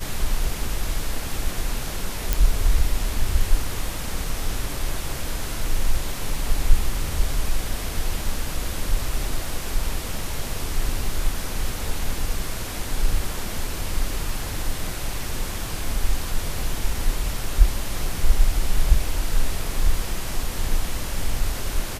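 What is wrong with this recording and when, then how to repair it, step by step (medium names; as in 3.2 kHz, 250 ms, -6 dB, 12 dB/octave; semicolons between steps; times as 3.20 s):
2.33 s: pop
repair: de-click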